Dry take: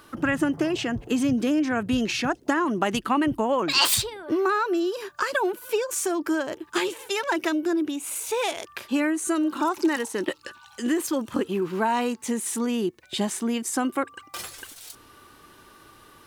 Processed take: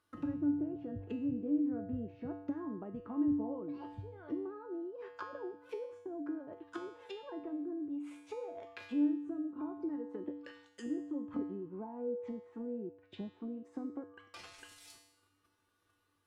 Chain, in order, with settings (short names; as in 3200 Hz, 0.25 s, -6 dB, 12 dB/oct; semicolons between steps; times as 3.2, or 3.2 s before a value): treble ducked by the level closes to 410 Hz, closed at -23 dBFS; gate -48 dBFS, range -15 dB; 11.56–13.62 LPF 1700 Hz 6 dB/oct; resonator 97 Hz, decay 0.78 s, harmonics odd, mix 90%; gain +3 dB